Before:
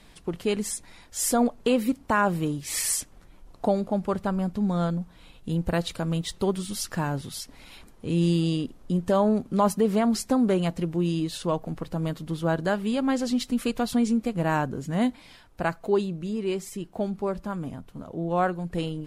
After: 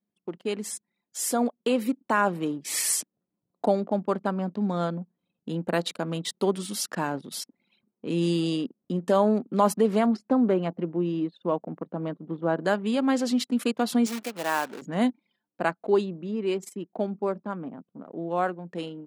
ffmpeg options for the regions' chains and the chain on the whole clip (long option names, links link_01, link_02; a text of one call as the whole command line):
ffmpeg -i in.wav -filter_complex "[0:a]asettb=1/sr,asplit=3[link_01][link_02][link_03];[link_01]atrim=end=10.064[link_04];[link_02]atrim=start=10.06:end=12.6,asetpts=PTS-STARTPTS,afade=type=in:duration=0.004:curve=qsin,afade=type=out:start_time=2.536:duration=0.004:curve=qsin,lowpass=frequency=3600:poles=1,highshelf=frequency=2400:gain=-8.5[link_05];[link_03]atrim=start=12.596[link_06];[link_04][link_05]acrossfade=duration=0.004:curve1=hsin:curve2=qsin[link_07];[link_07][link_06]acrossfade=duration=0.004:curve1=qsin:curve2=hsin,asettb=1/sr,asplit=3[link_08][link_09][link_10];[link_08]atrim=end=14.064[link_11];[link_09]atrim=start=14.06:end=14.82,asetpts=PTS-STARTPTS,afade=type=in:duration=0.004:curve=qsin,afade=type=out:start_time=0.756:duration=0.004:curve=qsin,aeval=exprs='val(0)+0.5*0.0237*sgn(val(0))':channel_layout=same,acrusher=bits=4:mode=log:mix=0:aa=0.000001,highpass=frequency=890:poles=1[link_12];[link_10]atrim=start=14.816[link_13];[link_11][link_12]acrossfade=duration=0.004:curve1=hsin:curve2=qsin[link_14];[link_14][link_13]acrossfade=duration=0.004:curve1=qsin:curve2=hsin,anlmdn=0.631,highpass=frequency=200:width=0.5412,highpass=frequency=200:width=1.3066,dynaudnorm=framelen=560:gausssize=7:maxgain=5dB,volume=-3.5dB" out.wav